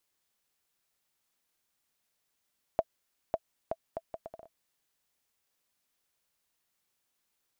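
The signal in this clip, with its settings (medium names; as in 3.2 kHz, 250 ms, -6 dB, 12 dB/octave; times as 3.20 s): bouncing ball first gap 0.55 s, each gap 0.68, 657 Hz, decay 46 ms -14 dBFS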